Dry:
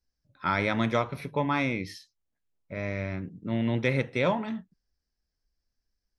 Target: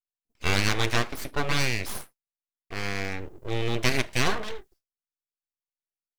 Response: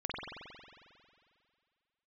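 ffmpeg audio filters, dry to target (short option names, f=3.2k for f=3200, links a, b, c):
-af "agate=range=-33dB:threshold=-53dB:ratio=3:detection=peak,crystalizer=i=5:c=0,aeval=exprs='abs(val(0))':c=same,volume=1.5dB"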